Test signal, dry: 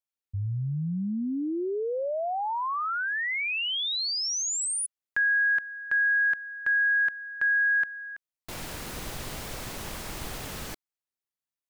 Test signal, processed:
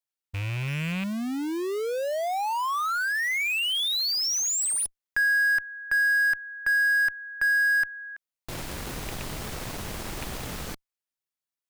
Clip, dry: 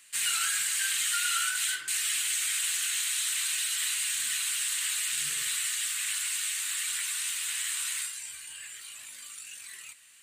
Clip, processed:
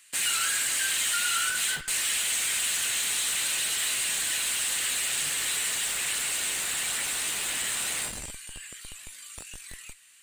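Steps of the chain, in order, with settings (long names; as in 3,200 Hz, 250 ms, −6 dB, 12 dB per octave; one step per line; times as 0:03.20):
loose part that buzzes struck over −32 dBFS, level −25 dBFS
in parallel at −6.5 dB: comparator with hysteresis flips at −32.5 dBFS
on the sum: low-shelf EQ 490 Hz −4 dB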